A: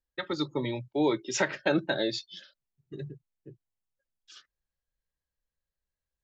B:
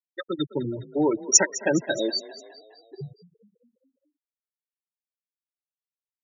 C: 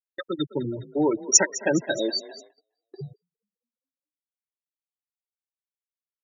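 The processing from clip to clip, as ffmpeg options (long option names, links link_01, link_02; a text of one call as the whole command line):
ffmpeg -i in.wav -filter_complex "[0:a]afftfilt=real='re*gte(hypot(re,im),0.0891)':imag='im*gte(hypot(re,im),0.0891)':win_size=1024:overlap=0.75,aexciter=amount=15.2:drive=3.5:freq=5200,asplit=6[link_01][link_02][link_03][link_04][link_05][link_06];[link_02]adelay=207,afreqshift=31,volume=-18dB[link_07];[link_03]adelay=414,afreqshift=62,volume=-22.9dB[link_08];[link_04]adelay=621,afreqshift=93,volume=-27.8dB[link_09];[link_05]adelay=828,afreqshift=124,volume=-32.6dB[link_10];[link_06]adelay=1035,afreqshift=155,volume=-37.5dB[link_11];[link_01][link_07][link_08][link_09][link_10][link_11]amix=inputs=6:normalize=0,volume=3.5dB" out.wav
ffmpeg -i in.wav -af "agate=range=-30dB:threshold=-44dB:ratio=16:detection=peak" out.wav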